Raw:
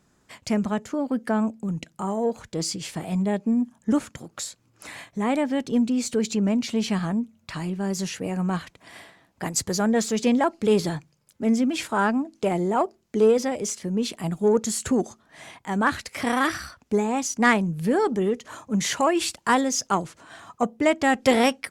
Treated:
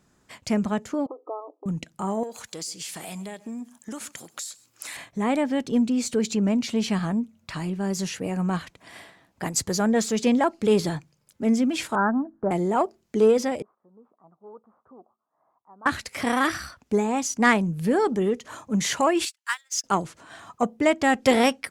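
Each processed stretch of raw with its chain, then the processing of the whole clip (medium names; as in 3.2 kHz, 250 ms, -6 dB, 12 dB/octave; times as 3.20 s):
1.06–1.66 s: compression 4:1, threshold -26 dBFS + brick-wall FIR band-pass 290–1300 Hz
2.23–4.97 s: tilt EQ +3.5 dB/octave + compression 5:1, threshold -32 dBFS + delay 131 ms -21 dB
11.95–12.51 s: steep low-pass 1.7 kHz 72 dB/octave + peaking EQ 470 Hz -6.5 dB 0.32 oct
13.62–15.86 s: CVSD coder 64 kbps + Chebyshev low-pass 1.2 kHz, order 5 + differentiator
19.25–19.84 s: companding laws mixed up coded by mu + high-pass 1.4 kHz 24 dB/octave + upward expansion 2.5:1, over -42 dBFS
whole clip: none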